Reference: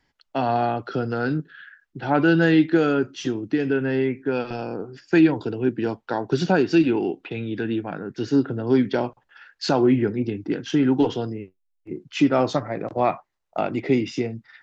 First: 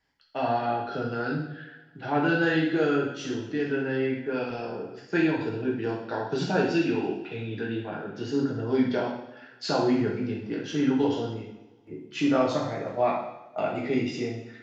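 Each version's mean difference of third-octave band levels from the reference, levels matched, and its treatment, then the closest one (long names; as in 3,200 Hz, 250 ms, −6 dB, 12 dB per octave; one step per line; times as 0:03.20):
5.0 dB: low-shelf EQ 360 Hz −3 dB
coupled-rooms reverb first 0.78 s, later 2.4 s, from −23 dB, DRR −4 dB
level −8 dB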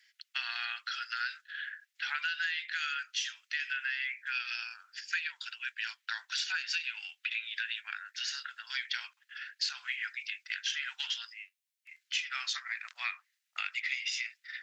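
19.0 dB: Butterworth high-pass 1,700 Hz 36 dB per octave
downward compressor 10 to 1, threshold −38 dBFS, peak gain reduction 13.5 dB
level +7.5 dB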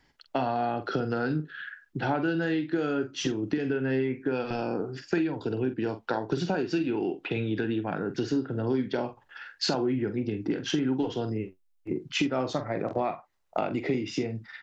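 3.5 dB: downward compressor 6 to 1, threshold −29 dBFS, peak gain reduction 16.5 dB
double-tracking delay 46 ms −10.5 dB
level +3.5 dB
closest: third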